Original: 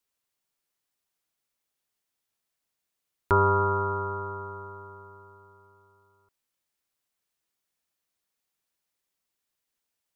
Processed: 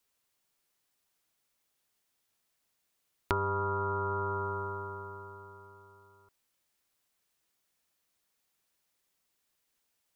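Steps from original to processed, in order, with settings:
downward compressor 8 to 1, threshold −33 dBFS, peak gain reduction 15.5 dB
level +4.5 dB

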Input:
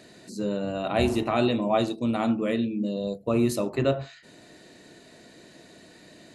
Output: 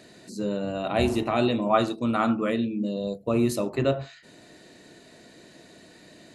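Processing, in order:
0:01.66–0:02.50: parametric band 1,300 Hz +10 dB 0.67 octaves

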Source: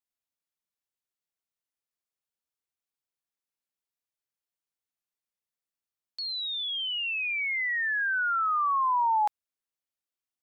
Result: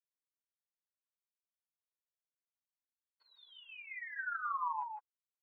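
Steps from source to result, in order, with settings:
mu-law and A-law mismatch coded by mu
comb filter 2 ms, depth 74%
downward compressor 20 to 1, threshold −28 dBFS, peak gain reduction 10.5 dB
resonant band-pass 1,200 Hz, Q 1.6
time stretch by phase vocoder 0.52×
high-frequency loss of the air 500 metres
on a send: single-tap delay 157 ms −4 dB
on the sum: level −1.5 dB

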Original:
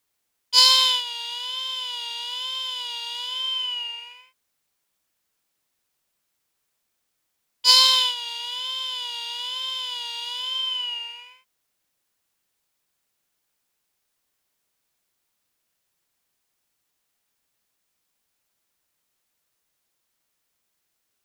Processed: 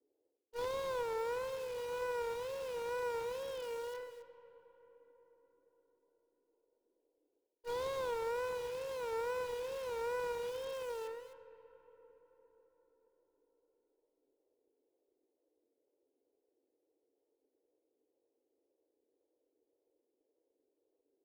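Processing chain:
elliptic band-pass filter 290–820 Hz, stop band 40 dB
low shelf with overshoot 590 Hz +8 dB, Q 3
reversed playback
downward compressor 12 to 1, threshold −45 dBFS, peak gain reduction 18 dB
reversed playback
tape wow and flutter 89 cents
in parallel at −9.5 dB: wrap-around overflow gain 56.5 dB
on the sum: harmonic generator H 3 −26 dB, 4 −7 dB, 6 −12 dB, 7 −22 dB, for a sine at −40 dBFS
convolution reverb RT60 4.8 s, pre-delay 25 ms, DRR 14 dB
level +9 dB

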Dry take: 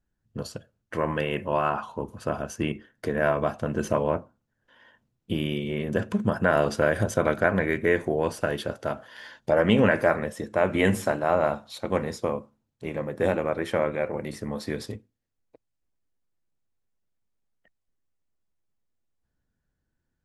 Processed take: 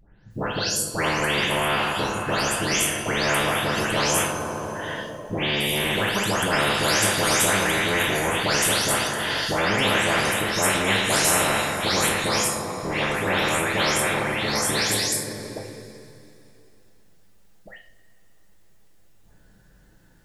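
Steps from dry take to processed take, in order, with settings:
every frequency bin delayed by itself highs late, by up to 308 ms
coupled-rooms reverb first 0.41 s, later 2.8 s, from −20 dB, DRR 1 dB
every bin compressed towards the loudest bin 4 to 1

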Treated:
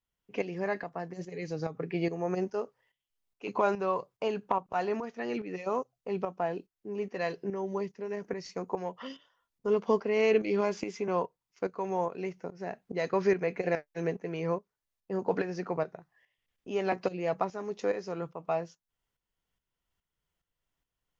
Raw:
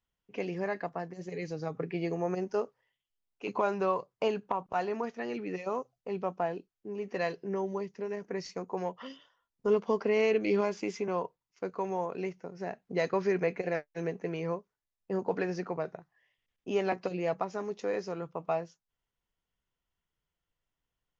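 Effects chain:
shaped tremolo saw up 2.4 Hz, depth 65%
level +4 dB

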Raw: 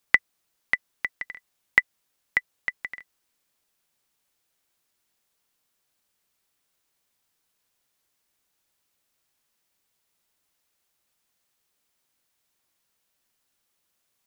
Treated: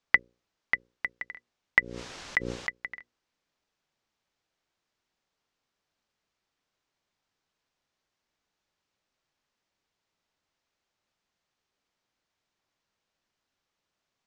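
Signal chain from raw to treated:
low-pass filter 6,400 Hz 24 dB per octave
high-shelf EQ 2,000 Hz −6 dB
mains-hum notches 60/120/180/240/300/360/420/480/540 Hz
0:01.78–0:02.69: background raised ahead of every attack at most 43 dB per second

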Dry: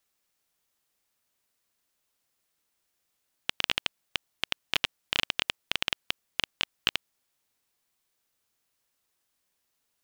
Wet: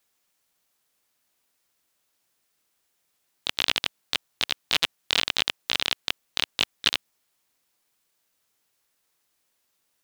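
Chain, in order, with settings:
low-shelf EQ 84 Hz −6 dB
pitch-shifted copies added +4 semitones −1 dB
level +2.5 dB

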